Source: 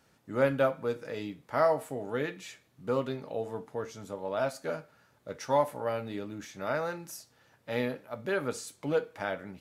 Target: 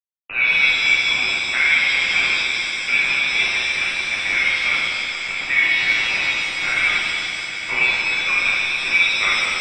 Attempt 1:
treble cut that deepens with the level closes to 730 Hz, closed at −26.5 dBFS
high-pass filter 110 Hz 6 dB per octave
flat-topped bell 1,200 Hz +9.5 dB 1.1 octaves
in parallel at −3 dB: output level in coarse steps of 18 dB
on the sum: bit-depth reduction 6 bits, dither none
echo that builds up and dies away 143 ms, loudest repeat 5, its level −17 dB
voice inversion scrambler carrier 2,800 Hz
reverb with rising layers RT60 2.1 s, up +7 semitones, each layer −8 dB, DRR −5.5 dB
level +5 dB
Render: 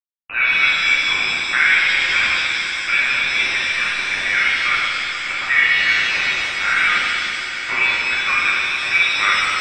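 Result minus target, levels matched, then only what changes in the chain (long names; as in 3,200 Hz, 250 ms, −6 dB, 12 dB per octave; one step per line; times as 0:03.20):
1,000 Hz band +5.0 dB
remove: flat-topped bell 1,200 Hz +9.5 dB 1.1 octaves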